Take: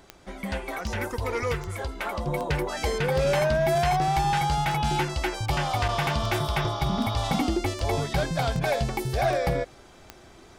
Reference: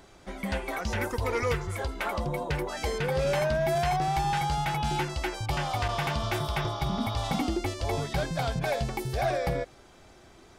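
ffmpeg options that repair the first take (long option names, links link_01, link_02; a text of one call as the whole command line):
ffmpeg -i in.wav -af "adeclick=threshold=4,asetnsamples=nb_out_samples=441:pad=0,asendcmd='2.27 volume volume -3.5dB',volume=0dB" out.wav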